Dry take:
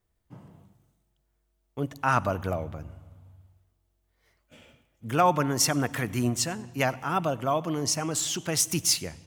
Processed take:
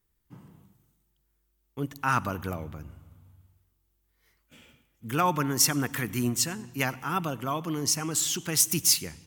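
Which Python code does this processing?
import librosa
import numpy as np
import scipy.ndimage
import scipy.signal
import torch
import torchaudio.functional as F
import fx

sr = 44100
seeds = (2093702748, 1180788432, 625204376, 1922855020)

y = fx.graphic_eq_15(x, sr, hz=(100, 630, 16000), db=(-4, -10, 11))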